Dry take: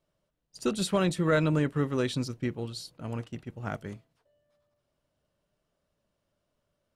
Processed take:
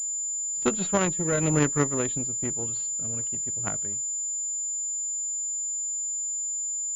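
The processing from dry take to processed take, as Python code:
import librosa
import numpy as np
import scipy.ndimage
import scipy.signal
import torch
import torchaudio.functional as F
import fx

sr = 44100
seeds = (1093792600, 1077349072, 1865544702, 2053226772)

y = fx.rotary_switch(x, sr, hz=1.0, then_hz=8.0, switch_at_s=2.91)
y = fx.cheby_harmonics(y, sr, harmonics=(3, 8), levels_db=(-13, -34), full_scale_db=-15.5)
y = fx.pwm(y, sr, carrier_hz=7100.0)
y = F.gain(torch.from_numpy(y), 8.0).numpy()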